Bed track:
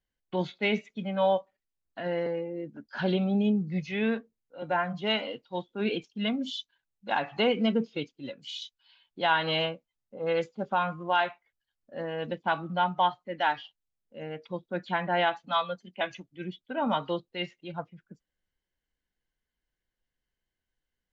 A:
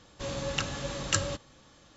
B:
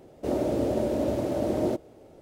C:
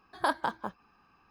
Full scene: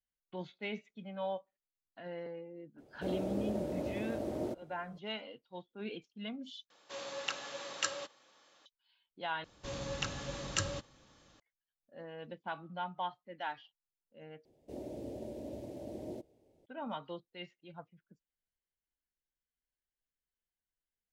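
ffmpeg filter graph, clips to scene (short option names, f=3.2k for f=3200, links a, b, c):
-filter_complex "[2:a]asplit=2[a][b];[1:a]asplit=2[c][d];[0:a]volume=-13dB[e];[c]highpass=510,lowpass=6.6k[f];[d]aresample=16000,aresample=44100[g];[b]equalizer=f=1.3k:w=1.8:g=-13.5[h];[e]asplit=4[i][j][k][l];[i]atrim=end=6.704[m];[f]atrim=end=1.96,asetpts=PTS-STARTPTS,volume=-5dB[n];[j]atrim=start=8.656:end=9.444[o];[g]atrim=end=1.96,asetpts=PTS-STARTPTS,volume=-6dB[p];[k]atrim=start=11.396:end=14.454[q];[h]atrim=end=2.21,asetpts=PTS-STARTPTS,volume=-16.5dB[r];[l]atrim=start=16.656[s];[a]atrim=end=2.21,asetpts=PTS-STARTPTS,volume=-11dB,afade=t=in:d=0.004:c=hsin,afade=t=out:st=2.206:d=0.004:c=hsin,adelay=2780[t];[m][n]acrossfade=d=0.004:c1=hsin:c2=hsin[u];[u][o]acrossfade=d=0.004:c1=hsin:c2=hsin[v];[v][p]acrossfade=d=0.004:c1=hsin:c2=hsin[w];[w][q]acrossfade=d=0.004:c1=hsin:c2=hsin[x];[x][r]acrossfade=d=0.004:c1=hsin:c2=hsin[y];[y][s]acrossfade=d=0.004:c1=hsin:c2=hsin[z];[z][t]amix=inputs=2:normalize=0"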